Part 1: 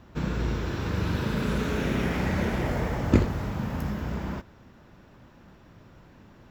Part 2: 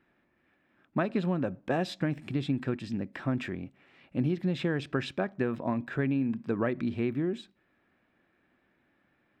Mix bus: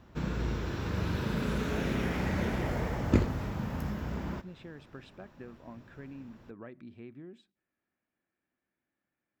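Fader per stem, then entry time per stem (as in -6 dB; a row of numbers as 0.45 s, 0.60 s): -4.5 dB, -17.5 dB; 0.00 s, 0.00 s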